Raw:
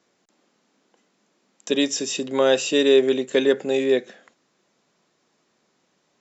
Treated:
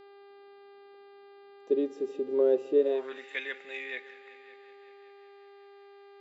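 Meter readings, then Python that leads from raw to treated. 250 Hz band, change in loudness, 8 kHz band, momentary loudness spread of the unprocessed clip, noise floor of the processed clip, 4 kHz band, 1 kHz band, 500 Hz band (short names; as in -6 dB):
-12.0 dB, -9.5 dB, n/a, 8 LU, -53 dBFS, -21.5 dB, -13.5 dB, -8.5 dB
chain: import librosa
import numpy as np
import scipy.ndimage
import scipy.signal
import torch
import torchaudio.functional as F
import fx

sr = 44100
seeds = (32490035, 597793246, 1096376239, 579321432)

y = fx.echo_heads(x, sr, ms=188, heads='all three', feedback_pct=49, wet_db=-22)
y = fx.filter_sweep_bandpass(y, sr, from_hz=390.0, to_hz=2100.0, start_s=2.75, end_s=3.26, q=4.5)
y = fx.dmg_buzz(y, sr, base_hz=400.0, harmonics=12, level_db=-53.0, tilt_db=-8, odd_only=False)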